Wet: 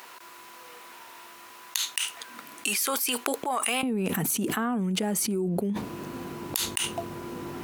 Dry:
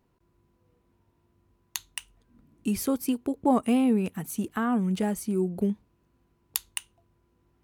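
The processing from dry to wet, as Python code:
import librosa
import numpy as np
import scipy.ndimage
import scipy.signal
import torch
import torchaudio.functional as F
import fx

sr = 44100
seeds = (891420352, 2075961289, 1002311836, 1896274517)

y = fx.highpass(x, sr, hz=fx.steps((0.0, 1200.0), (3.83, 190.0)), slope=12)
y = fx.env_flatten(y, sr, amount_pct=100)
y = F.gain(torch.from_numpy(y), -5.0).numpy()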